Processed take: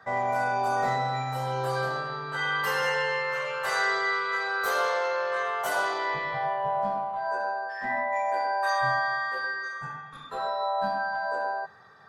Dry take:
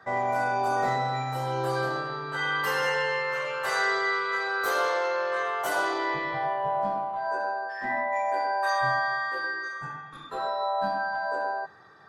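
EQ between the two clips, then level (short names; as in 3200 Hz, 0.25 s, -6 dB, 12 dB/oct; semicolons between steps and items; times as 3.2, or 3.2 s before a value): bell 330 Hz -14.5 dB 0.23 oct; 0.0 dB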